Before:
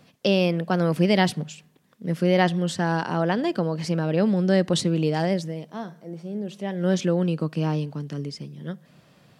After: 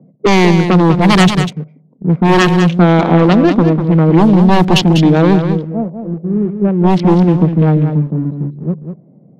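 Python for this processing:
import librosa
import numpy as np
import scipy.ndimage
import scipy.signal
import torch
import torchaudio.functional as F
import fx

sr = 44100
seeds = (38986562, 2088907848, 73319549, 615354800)

p1 = fx.wiener(x, sr, points=25)
p2 = scipy.signal.sosfilt(scipy.signal.butter(4, 150.0, 'highpass', fs=sr, output='sos'), p1)
p3 = fx.formant_shift(p2, sr, semitones=-4)
p4 = np.where(np.abs(p3) >= 10.0 ** (-37.0 / 20.0), p3, 0.0)
p5 = p3 + (p4 * 10.0 ** (-6.5 / 20.0))
p6 = fx.env_lowpass(p5, sr, base_hz=460.0, full_db=-12.5)
p7 = fx.fold_sine(p6, sr, drive_db=12, ceiling_db=-3.5)
p8 = p7 + fx.echo_single(p7, sr, ms=196, db=-8.0, dry=0)
y = p8 * 10.0 ** (-1.5 / 20.0)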